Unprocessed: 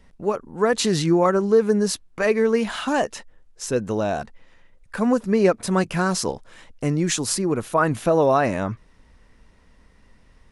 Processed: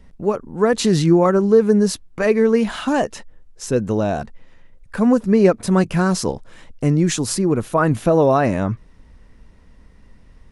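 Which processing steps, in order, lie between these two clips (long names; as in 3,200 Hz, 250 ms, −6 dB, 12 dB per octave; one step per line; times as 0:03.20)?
low-shelf EQ 410 Hz +7.5 dB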